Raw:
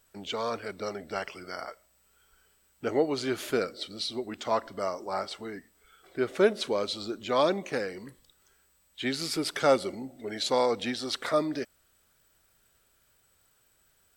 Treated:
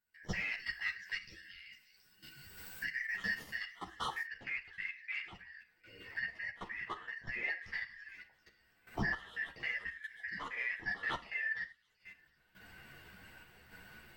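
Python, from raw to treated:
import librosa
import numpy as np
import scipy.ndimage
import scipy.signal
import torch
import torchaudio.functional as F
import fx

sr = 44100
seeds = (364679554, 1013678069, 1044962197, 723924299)

y = fx.band_shuffle(x, sr, order='3142')
y = fx.recorder_agc(y, sr, target_db=-19.0, rise_db_per_s=20.0, max_gain_db=30)
y = 10.0 ** (-14.5 / 20.0) * np.tanh(y / 10.0 ** (-14.5 / 20.0))
y = fx.peak_eq(y, sr, hz=8200.0, db=-9.0, octaves=1.6)
y = fx.echo_wet_highpass(y, sr, ms=725, feedback_pct=33, hz=4600.0, wet_db=-8.0)
y = fx.level_steps(y, sr, step_db=16)
y = fx.rev_gated(y, sr, seeds[0], gate_ms=140, shape='falling', drr_db=8.5)
y = fx.tremolo_random(y, sr, seeds[1], hz=3.5, depth_pct=55)
y = fx.bass_treble(y, sr, bass_db=7, treble_db=fx.steps((0.0, 2.0), (4.24, -12.0)))
y = fx.ensemble(y, sr)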